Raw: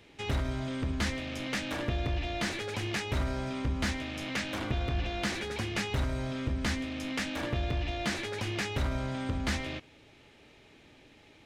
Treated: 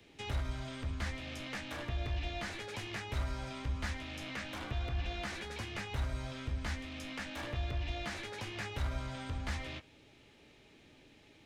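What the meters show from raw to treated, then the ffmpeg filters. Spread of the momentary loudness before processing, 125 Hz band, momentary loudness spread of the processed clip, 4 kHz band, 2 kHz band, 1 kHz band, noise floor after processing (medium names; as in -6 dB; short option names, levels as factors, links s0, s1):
3 LU, -5.5 dB, 4 LU, -6.5 dB, -6.5 dB, -6.0 dB, -62 dBFS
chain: -filter_complex "[0:a]bandreject=f=51.89:t=h:w=4,bandreject=f=103.78:t=h:w=4,acrossover=split=110|520|2300[s0][s1][s2][s3];[s1]acompressor=threshold=0.00562:ratio=6[s4];[s2]flanger=delay=16:depth=2.3:speed=2.1[s5];[s3]alimiter=level_in=3.98:limit=0.0631:level=0:latency=1:release=276,volume=0.251[s6];[s0][s4][s5][s6]amix=inputs=4:normalize=0,volume=0.75"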